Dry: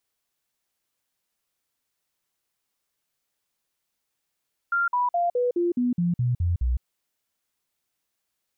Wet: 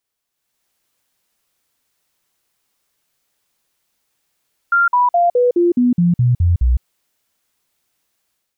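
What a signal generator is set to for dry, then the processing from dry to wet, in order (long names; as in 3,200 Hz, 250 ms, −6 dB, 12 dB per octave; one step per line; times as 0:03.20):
stepped sweep 1,390 Hz down, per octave 2, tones 10, 0.16 s, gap 0.05 s −20 dBFS
automatic gain control gain up to 10 dB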